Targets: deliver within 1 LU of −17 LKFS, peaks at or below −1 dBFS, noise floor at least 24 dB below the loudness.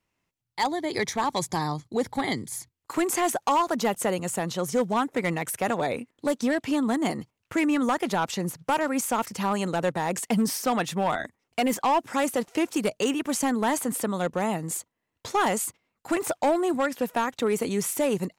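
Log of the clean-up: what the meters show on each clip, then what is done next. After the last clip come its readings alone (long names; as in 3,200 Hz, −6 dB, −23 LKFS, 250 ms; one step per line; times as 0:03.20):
share of clipped samples 1.3%; peaks flattened at −17.5 dBFS; integrated loudness −27.0 LKFS; sample peak −17.5 dBFS; target loudness −17.0 LKFS
→ clipped peaks rebuilt −17.5 dBFS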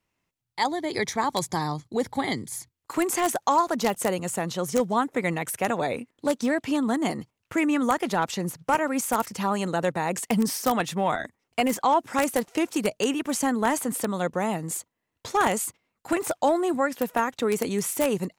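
share of clipped samples 0.0%; integrated loudness −26.0 LKFS; sample peak −8.5 dBFS; target loudness −17.0 LKFS
→ level +9 dB
brickwall limiter −1 dBFS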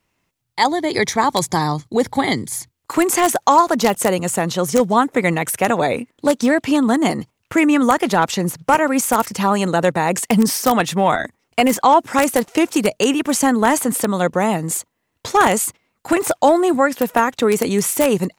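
integrated loudness −17.5 LKFS; sample peak −1.0 dBFS; background noise floor −72 dBFS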